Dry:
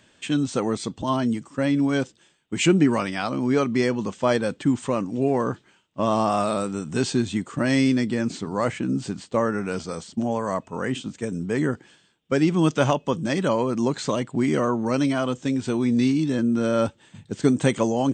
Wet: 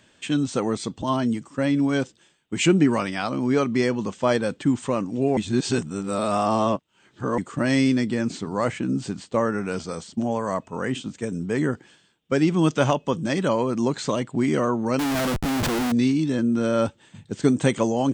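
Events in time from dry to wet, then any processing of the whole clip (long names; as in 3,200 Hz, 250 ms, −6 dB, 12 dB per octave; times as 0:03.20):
0:05.37–0:07.38: reverse
0:14.99–0:15.92: comparator with hysteresis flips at −36.5 dBFS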